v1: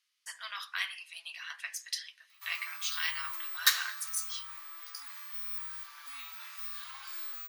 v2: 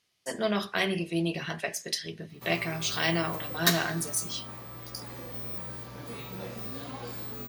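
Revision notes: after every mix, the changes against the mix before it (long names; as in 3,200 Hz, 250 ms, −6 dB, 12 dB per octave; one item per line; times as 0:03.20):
speech +4.5 dB
master: remove Butterworth high-pass 1,100 Hz 36 dB per octave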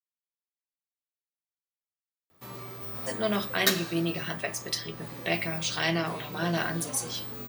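speech: entry +2.80 s
master: add high-pass filter 74 Hz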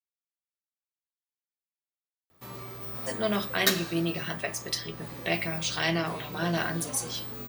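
master: remove high-pass filter 74 Hz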